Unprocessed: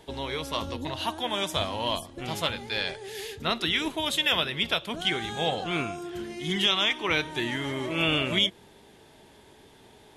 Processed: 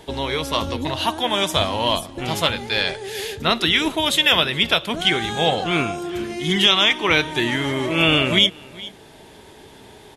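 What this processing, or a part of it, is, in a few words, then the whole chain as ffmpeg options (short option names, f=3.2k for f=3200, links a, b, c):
ducked delay: -filter_complex "[0:a]asplit=3[a][b][c];[b]adelay=418,volume=-5.5dB[d];[c]apad=whole_len=466704[e];[d][e]sidechaincompress=threshold=-48dB:ratio=4:attack=9.2:release=447[f];[a][f]amix=inputs=2:normalize=0,volume=8.5dB"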